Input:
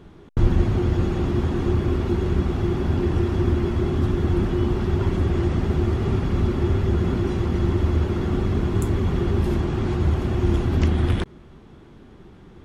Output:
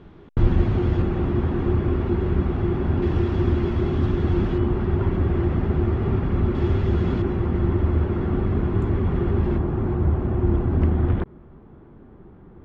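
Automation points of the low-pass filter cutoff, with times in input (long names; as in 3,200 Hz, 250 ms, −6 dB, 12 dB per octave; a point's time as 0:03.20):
3,500 Hz
from 0:01.02 2,400 Hz
from 0:03.02 4,000 Hz
from 0:04.58 2,200 Hz
from 0:06.55 4,100 Hz
from 0:07.22 2,000 Hz
from 0:09.58 1,300 Hz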